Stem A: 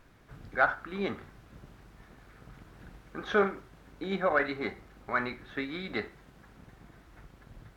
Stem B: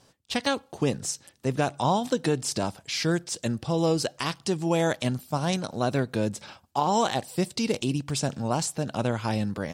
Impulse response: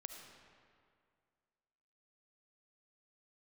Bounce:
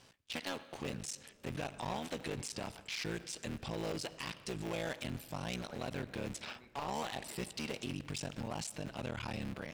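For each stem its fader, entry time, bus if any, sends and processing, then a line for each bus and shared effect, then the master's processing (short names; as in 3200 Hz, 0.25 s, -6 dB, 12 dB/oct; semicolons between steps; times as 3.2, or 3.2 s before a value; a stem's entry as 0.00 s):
-17.5 dB, 1.35 s, no send, compressor, threshold -35 dBFS, peak gain reduction 15.5 dB
-4.5 dB, 0.00 s, send -16 dB, cycle switcher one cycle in 3, muted; bell 2500 Hz +8.5 dB 1.2 oct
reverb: on, RT60 2.2 s, pre-delay 30 ms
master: overloaded stage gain 23.5 dB; limiter -32.5 dBFS, peak gain reduction 9 dB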